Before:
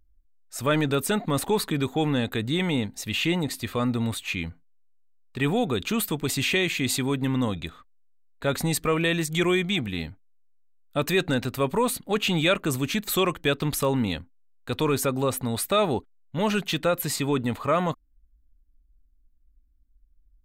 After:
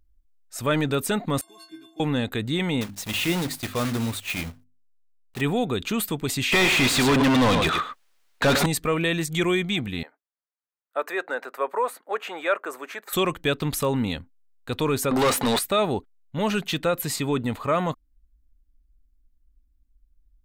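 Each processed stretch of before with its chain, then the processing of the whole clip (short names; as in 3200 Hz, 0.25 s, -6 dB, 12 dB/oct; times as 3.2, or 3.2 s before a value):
1.41–2 CVSD 64 kbps + HPF 190 Hz + metallic resonator 320 Hz, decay 0.52 s, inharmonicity 0.03
2.81–5.42 block floating point 3-bit + notches 50/100/150/200/250/300 Hz
6.52–8.66 echo 0.107 s -12.5 dB + overdrive pedal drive 36 dB, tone 3100 Hz, clips at -12 dBFS
10.03–13.13 HPF 450 Hz 24 dB/oct + resonant high shelf 2300 Hz -11.5 dB, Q 1.5
15.11–15.59 HPF 190 Hz 6 dB/oct + overdrive pedal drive 29 dB, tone 4600 Hz, clips at -13 dBFS
whole clip: dry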